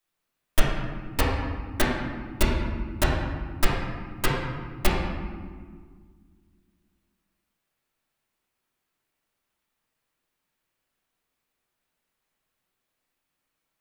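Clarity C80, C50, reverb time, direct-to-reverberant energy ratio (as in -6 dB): 2.5 dB, 0.5 dB, 1.8 s, -6.5 dB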